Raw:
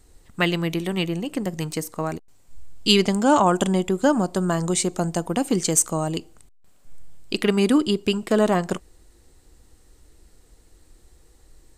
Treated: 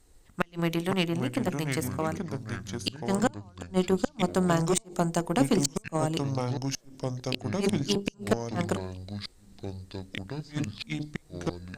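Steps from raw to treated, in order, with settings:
mains-hum notches 50/100/150/200/250/300/350/400/450/500 Hz
gate with flip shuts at −10 dBFS, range −35 dB
harmonic generator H 4 −24 dB, 7 −24 dB, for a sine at −7.5 dBFS
in parallel at −7.5 dB: soft clipping −17.5 dBFS, distortion −13 dB
on the sum: delay with pitch and tempo change per echo 372 ms, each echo −5 semitones, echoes 2, each echo −6 dB
level −3 dB

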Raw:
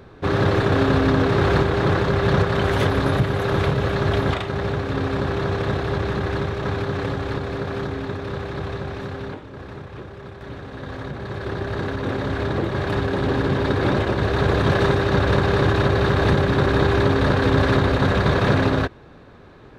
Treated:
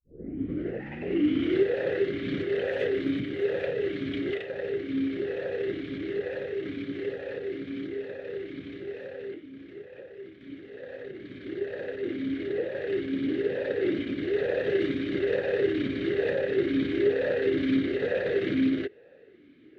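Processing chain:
turntable start at the beginning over 1.66 s
gain on a spectral selection 0:00.79–0:01.03, 370–750 Hz −18 dB
formant filter swept between two vowels e-i 1.1 Hz
level +3 dB

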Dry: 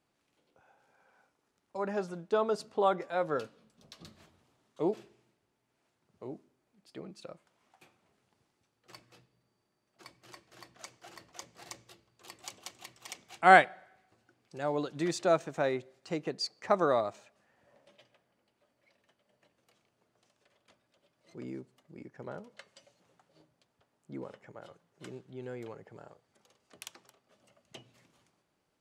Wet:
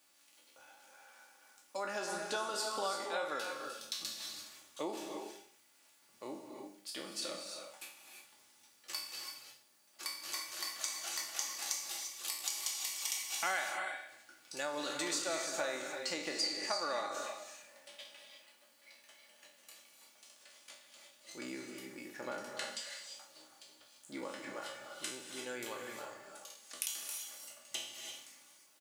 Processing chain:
peak hold with a decay on every bin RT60 0.47 s
spectral tilt +4.5 dB per octave
comb filter 3.5 ms, depth 46%
downward compressor 5 to 1, threshold −38 dBFS, peak gain reduction 23 dB
reverb whose tail is shaped and stops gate 370 ms rising, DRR 3.5 dB
level +2 dB

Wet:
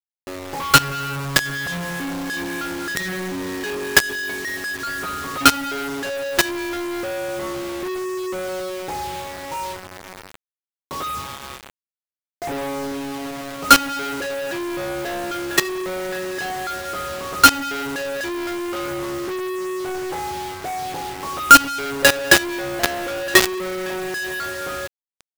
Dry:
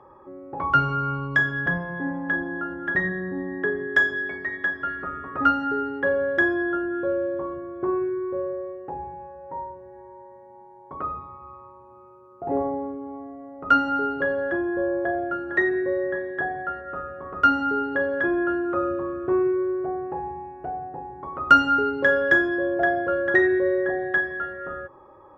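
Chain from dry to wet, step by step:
log-companded quantiser 2 bits
level −1 dB

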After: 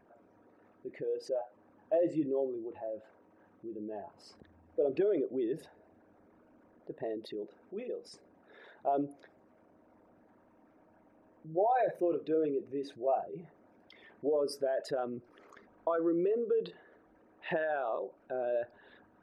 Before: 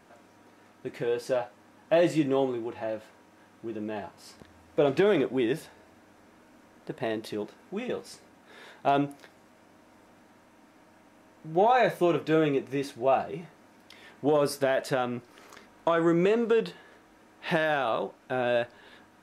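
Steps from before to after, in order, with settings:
spectral envelope exaggerated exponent 2
level −6.5 dB

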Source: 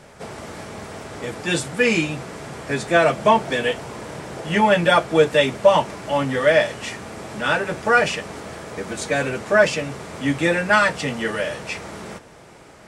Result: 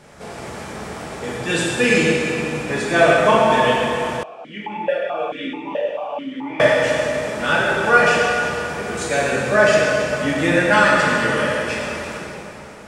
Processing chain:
dense smooth reverb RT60 2.9 s, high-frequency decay 0.8×, DRR −5 dB
0:04.23–0:06.60: formant filter that steps through the vowels 4.6 Hz
level −2 dB

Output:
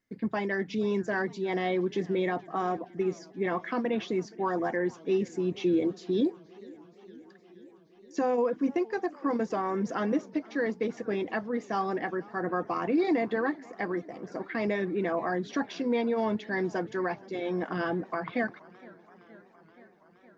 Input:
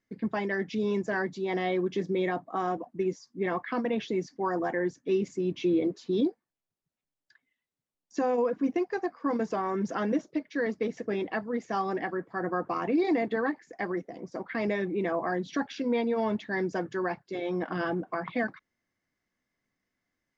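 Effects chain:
feedback echo with a swinging delay time 470 ms, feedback 74%, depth 180 cents, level −23 dB

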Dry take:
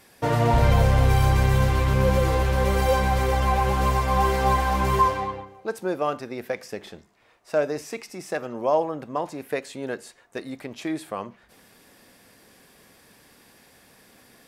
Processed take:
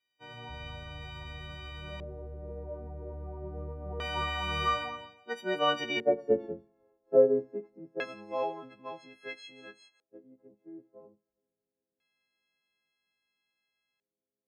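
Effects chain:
every partial snapped to a pitch grid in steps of 4 semitones
source passing by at 0:06.36, 23 m/s, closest 9.8 metres
delay with a high-pass on its return 183 ms, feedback 32%, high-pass 3,700 Hz, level −12 dB
auto-filter low-pass square 0.25 Hz 460–3,000 Hz
multiband upward and downward expander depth 40%

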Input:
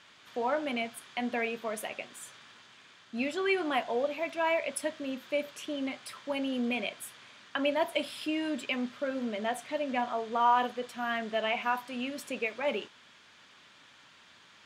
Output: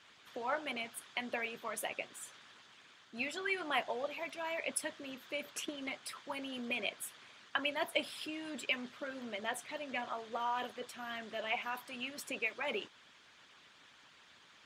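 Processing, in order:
harmonic and percussive parts rebalanced harmonic −12 dB
0:05.50–0:05.92: transient designer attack +6 dB, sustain −2 dB

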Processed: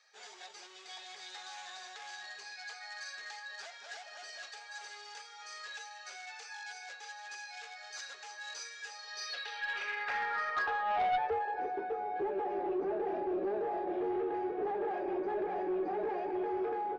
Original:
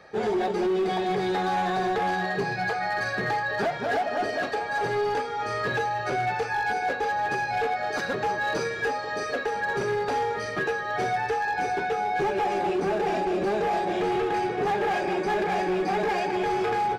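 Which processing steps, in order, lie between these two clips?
band-pass filter sweep 7,200 Hz → 330 Hz, 0:08.91–0:11.74
three-way crossover with the lows and the highs turned down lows −15 dB, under 520 Hz, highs −22 dB, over 6,900 Hz
harmonic generator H 2 −10 dB, 4 −18 dB, 5 −17 dB, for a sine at −23 dBFS

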